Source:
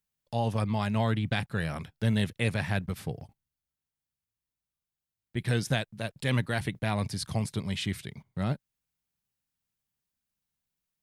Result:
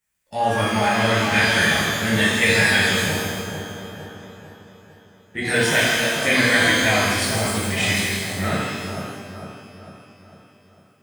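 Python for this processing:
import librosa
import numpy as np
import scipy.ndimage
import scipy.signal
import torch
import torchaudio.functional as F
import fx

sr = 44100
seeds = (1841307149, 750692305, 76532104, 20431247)

p1 = fx.spec_quant(x, sr, step_db=15)
p2 = fx.graphic_eq(p1, sr, hz=(125, 250, 2000, 4000, 8000), db=(-10, 4, 11, -5, 7))
p3 = p2 + fx.echo_split(p2, sr, split_hz=1300.0, low_ms=451, high_ms=162, feedback_pct=52, wet_db=-6.5, dry=0)
y = fx.rev_shimmer(p3, sr, seeds[0], rt60_s=1.1, semitones=12, shimmer_db=-8, drr_db=-9.5)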